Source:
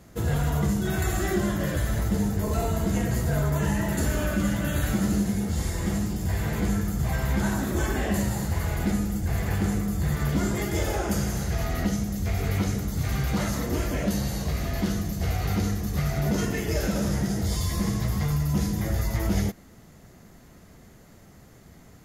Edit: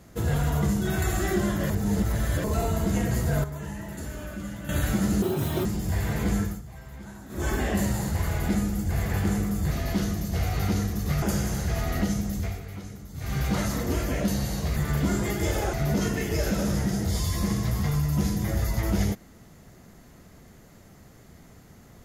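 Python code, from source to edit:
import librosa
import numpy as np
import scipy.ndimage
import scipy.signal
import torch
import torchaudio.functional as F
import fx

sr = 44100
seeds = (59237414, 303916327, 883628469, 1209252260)

y = fx.edit(x, sr, fx.reverse_span(start_s=1.7, length_s=0.74),
    fx.clip_gain(start_s=3.44, length_s=1.25, db=-10.5),
    fx.speed_span(start_s=5.22, length_s=0.8, speed=1.85),
    fx.fade_down_up(start_s=6.78, length_s=1.09, db=-17.0, fade_s=0.22),
    fx.swap(start_s=10.08, length_s=0.97, other_s=14.59, other_length_s=1.51),
    fx.fade_down_up(start_s=12.18, length_s=1.06, db=-13.0, fade_s=0.27), tone=tone)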